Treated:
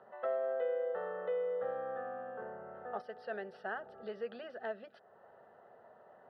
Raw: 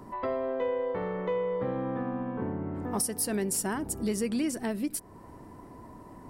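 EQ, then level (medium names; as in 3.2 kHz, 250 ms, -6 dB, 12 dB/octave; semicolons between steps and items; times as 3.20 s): band-pass 550–2300 Hz; distance through air 240 m; static phaser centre 1.5 kHz, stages 8; +1.5 dB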